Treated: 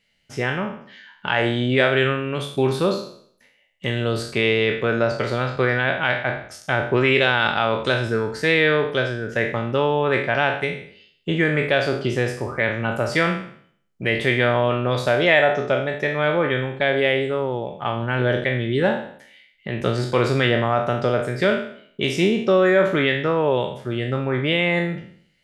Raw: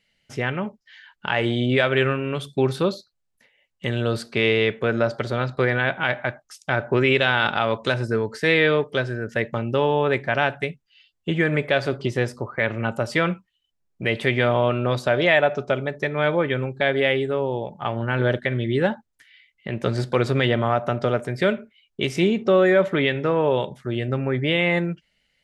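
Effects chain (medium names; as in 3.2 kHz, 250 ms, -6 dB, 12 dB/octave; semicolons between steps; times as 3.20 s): spectral sustain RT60 0.58 s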